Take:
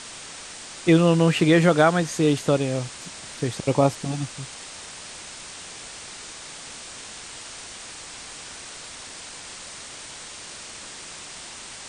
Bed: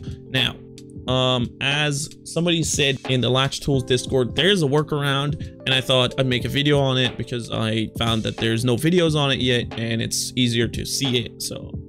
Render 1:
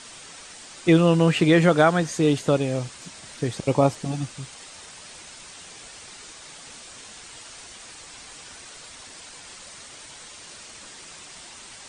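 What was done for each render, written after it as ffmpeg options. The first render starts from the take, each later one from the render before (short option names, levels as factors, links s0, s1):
-af "afftdn=nr=6:nf=-40"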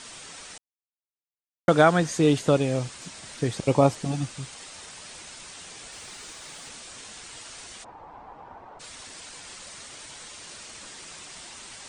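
-filter_complex "[0:a]asettb=1/sr,asplit=3[s0][s1][s2];[s0]atrim=end=5.924[s3];[s1]atrim=start=5.92:end=6.69,asetpts=PTS-STARTPTS,afade=t=in:d=0.004:c=qsin,afade=t=out:st=0.766:d=0.004:c=qsin,aeval=exprs='val(0)+0.5*0.00158*sgn(val(0))':c=same[s4];[s2]atrim=start=6.686[s5];[s3][s4]acrossfade=d=0.004:c1=hsin:c2=qsin[s6];[s6][s5]acrossfade=d=0.004:c1=qsin:c2=hsin,asplit=3[s7][s8][s9];[s7]afade=t=out:st=7.83:d=0.02[s10];[s8]lowpass=f=880:t=q:w=3.9,afade=t=in:st=7.83:d=0.02,afade=t=out:st=8.79:d=0.02[s11];[s9]afade=t=in:st=8.79:d=0.02[s12];[s10][s11][s12]amix=inputs=3:normalize=0,asplit=3[s13][s14][s15];[s13]atrim=end=0.58,asetpts=PTS-STARTPTS,afade=t=out:st=0.576:d=0.004:c=hsin[s16];[s14]atrim=start=0.58:end=1.68,asetpts=PTS-STARTPTS,volume=0[s17];[s15]atrim=start=1.68,asetpts=PTS-STARTPTS,afade=t=in:d=0.004:c=hsin[s18];[s16][s17][s18]concat=n=3:v=0:a=1"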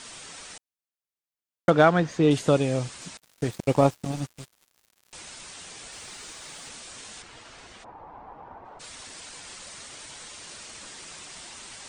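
-filter_complex "[0:a]asettb=1/sr,asplit=3[s0][s1][s2];[s0]atrim=end=1.704[s3];[s1]atrim=start=1.7:end=2.31,asetpts=PTS-STARTPTS,afade=t=in:d=0.004:c=qsin,afade=t=out:st=0.606:d=0.004:c=qsin,adynamicsmooth=sensitivity=1:basefreq=3500[s4];[s2]atrim=start=2.306[s5];[s3][s4]acrossfade=d=0.004:c1=hsin:c2=qsin[s6];[s6][s5]acrossfade=d=0.004:c1=qsin:c2=hsin,asettb=1/sr,asplit=3[s7][s8][s9];[s7]atrim=end=3.174[s10];[s8]atrim=start=3.17:end=5.13,asetpts=PTS-STARTPTS,afade=t=in:d=0.004:c=qsin,afade=t=out:st=1.956:d=0.004:c=qsin,aeval=exprs='sgn(val(0))*max(abs(val(0))-0.0158,0)':c=same[s11];[s9]atrim=start=5.126[s12];[s10][s11]acrossfade=d=0.004:c1=hsin:c2=qsin[s13];[s13][s12]acrossfade=d=0.004:c1=qsin:c2=hsin,asettb=1/sr,asplit=3[s14][s15][s16];[s14]atrim=end=7.224[s17];[s15]atrim=start=7.22:end=8.65,asetpts=PTS-STARTPTS,afade=t=in:d=0.004:c=qsin,afade=t=out:st=1.426:d=0.004:c=qsin,aemphasis=mode=reproduction:type=75fm[s18];[s16]atrim=start=8.646[s19];[s17][s18]acrossfade=d=0.004:c1=hsin:c2=qsin[s20];[s20][s19]acrossfade=d=0.004:c1=qsin:c2=hsin"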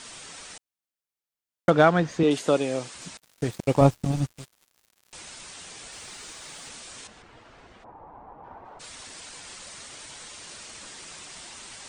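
-filter_complex "[0:a]asettb=1/sr,asplit=3[s0][s1][s2];[s0]atrim=end=2.234[s3];[s1]atrim=start=2.23:end=2.95,asetpts=PTS-STARTPTS,afade=t=in:d=0.004:c=qsin,afade=t=out:st=0.716:d=0.004:c=qsin,highpass=250[s4];[s2]atrim=start=2.946[s5];[s3][s4]acrossfade=d=0.004:c1=hsin:c2=qsin[s6];[s6][s5]acrossfade=d=0.004:c1=qsin:c2=hsin,asettb=1/sr,asplit=3[s7][s8][s9];[s7]atrim=end=3.814[s10];[s8]atrim=start=3.81:end=4.32,asetpts=PTS-STARTPTS,afade=t=in:d=0.004:c=qsin,afade=t=out:st=0.506:d=0.004:c=qsin,lowshelf=f=180:g=10.5[s11];[s9]atrim=start=4.316[s12];[s10][s11]acrossfade=d=0.004:c1=hsin:c2=qsin[s13];[s13][s12]acrossfade=d=0.004:c1=qsin:c2=hsin,asettb=1/sr,asplit=3[s14][s15][s16];[s14]atrim=end=7.074[s17];[s15]atrim=start=7.07:end=8.44,asetpts=PTS-STARTPTS,afade=t=in:d=0.004:c=qsin,afade=t=out:st=1.366:d=0.004:c=qsin,lowpass=f=1200:p=1[s18];[s16]atrim=start=8.436[s19];[s17][s18]acrossfade=d=0.004:c1=hsin:c2=qsin[s20];[s20][s19]acrossfade=d=0.004:c1=qsin:c2=hsin"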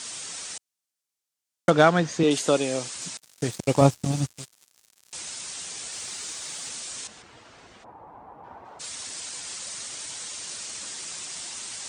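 -af "highpass=69,equalizer=f=7100:w=0.59:g=9"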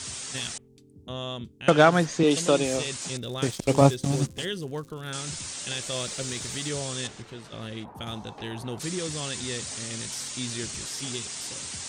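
-filter_complex "[1:a]volume=0.178[s0];[0:a][s0]amix=inputs=2:normalize=0"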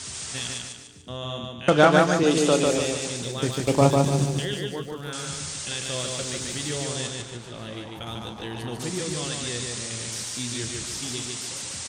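-filter_complex "[0:a]asplit=2[s0][s1];[s1]adelay=33,volume=0.211[s2];[s0][s2]amix=inputs=2:normalize=0,aecho=1:1:147|294|441|588|735:0.708|0.297|0.125|0.0525|0.022"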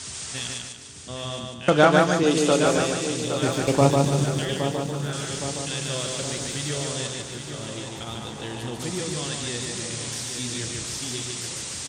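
-af "aecho=1:1:816|1632|2448|3264|4080|4896:0.355|0.188|0.0997|0.0528|0.028|0.0148"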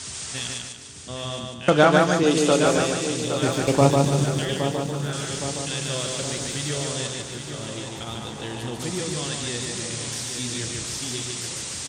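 -af "volume=1.12,alimiter=limit=0.708:level=0:latency=1"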